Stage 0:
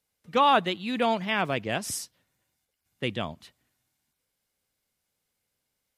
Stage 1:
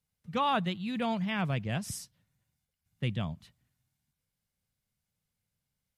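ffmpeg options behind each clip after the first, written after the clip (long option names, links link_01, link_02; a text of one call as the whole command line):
ffmpeg -i in.wav -af "lowshelf=frequency=230:width_type=q:width=1.5:gain=10.5,volume=-7.5dB" out.wav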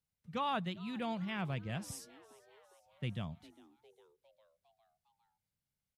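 ffmpeg -i in.wav -filter_complex "[0:a]asplit=6[link_01][link_02][link_03][link_04][link_05][link_06];[link_02]adelay=405,afreqshift=140,volume=-21.5dB[link_07];[link_03]adelay=810,afreqshift=280,volume=-25.9dB[link_08];[link_04]adelay=1215,afreqshift=420,volume=-30.4dB[link_09];[link_05]adelay=1620,afreqshift=560,volume=-34.8dB[link_10];[link_06]adelay=2025,afreqshift=700,volume=-39.2dB[link_11];[link_01][link_07][link_08][link_09][link_10][link_11]amix=inputs=6:normalize=0,volume=-7dB" out.wav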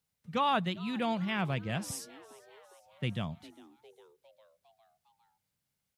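ffmpeg -i in.wav -af "lowshelf=frequency=75:gain=-10.5,volume=7dB" out.wav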